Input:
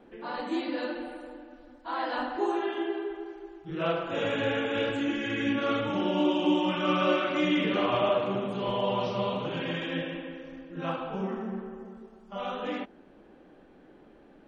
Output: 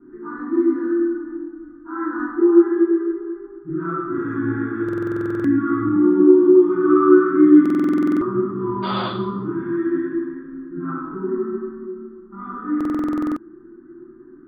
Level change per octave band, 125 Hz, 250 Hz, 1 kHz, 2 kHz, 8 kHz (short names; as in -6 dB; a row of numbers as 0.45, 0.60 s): +6.0 dB, +14.0 dB, +3.5 dB, +1.5 dB, n/a